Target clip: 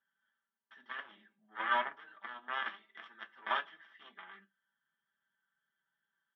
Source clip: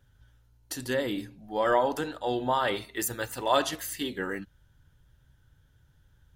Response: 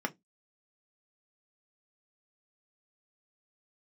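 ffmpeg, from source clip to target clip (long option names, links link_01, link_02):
-filter_complex "[0:a]aecho=1:1:5.1:0.88,asplit=2[link_01][link_02];[link_02]acompressor=threshold=-33dB:ratio=6,volume=0dB[link_03];[link_01][link_03]amix=inputs=2:normalize=0,aeval=exprs='0.473*(cos(1*acos(clip(val(0)/0.473,-1,1)))-cos(1*PI/2))+0.0376*(cos(2*acos(clip(val(0)/0.473,-1,1)))-cos(2*PI/2))+0.168*(cos(3*acos(clip(val(0)/0.473,-1,1)))-cos(3*PI/2))':channel_layout=same,asoftclip=type=tanh:threshold=-20.5dB,highpass=440,equalizer=frequency=480:width_type=q:width=4:gain=-8,equalizer=frequency=1200:width_type=q:width=4:gain=8,equalizer=frequency=1700:width_type=q:width=4:gain=10,equalizer=frequency=3300:width_type=q:width=4:gain=10,lowpass=frequency=3700:width=0.5412,lowpass=frequency=3700:width=1.3066[link_04];[1:a]atrim=start_sample=2205[link_05];[link_04][link_05]afir=irnorm=-1:irlink=0,volume=-8.5dB"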